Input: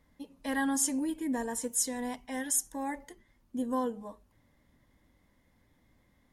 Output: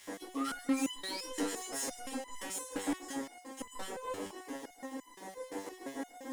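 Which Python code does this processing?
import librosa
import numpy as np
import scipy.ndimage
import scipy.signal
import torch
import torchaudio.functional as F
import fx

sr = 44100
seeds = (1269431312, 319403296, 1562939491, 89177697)

p1 = fx.bin_compress(x, sr, power=0.4)
p2 = fx.tilt_eq(p1, sr, slope=-2.0)
p3 = fx.filter_lfo_highpass(p2, sr, shape='square', hz=6.8, low_hz=390.0, high_hz=3000.0, q=1.8)
p4 = fx.spec_paint(p3, sr, seeds[0], shape='rise', start_s=0.35, length_s=0.9, low_hz=1100.0, high_hz=5700.0, level_db=-37.0)
p5 = fx.leveller(p4, sr, passes=5)
p6 = fx.high_shelf(p5, sr, hz=9800.0, db=-4.0)
p7 = p6 + fx.echo_stepped(p6, sr, ms=129, hz=340.0, octaves=1.4, feedback_pct=70, wet_db=-2, dry=0)
p8 = fx.resonator_held(p7, sr, hz=5.8, low_hz=98.0, high_hz=1000.0)
y = p8 * librosa.db_to_amplitude(-7.5)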